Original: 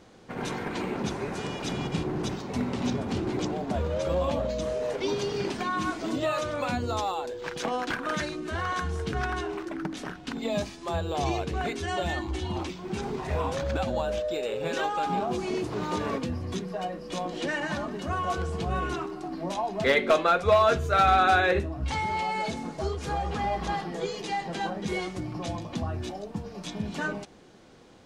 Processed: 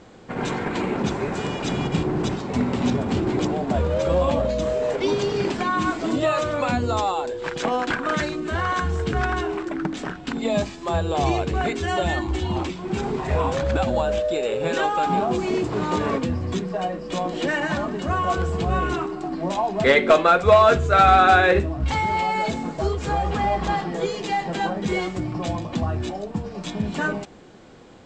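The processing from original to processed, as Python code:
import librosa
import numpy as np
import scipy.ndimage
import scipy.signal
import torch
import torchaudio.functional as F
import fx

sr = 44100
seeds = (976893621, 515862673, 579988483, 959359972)

p1 = fx.peak_eq(x, sr, hz=7500.0, db=13.5, octaves=0.25)
p2 = fx.quant_float(p1, sr, bits=2)
p3 = p1 + F.gain(torch.from_numpy(p2), -6.0).numpy()
p4 = fx.air_absorb(p3, sr, metres=120.0)
y = F.gain(torch.from_numpy(p4), 3.5).numpy()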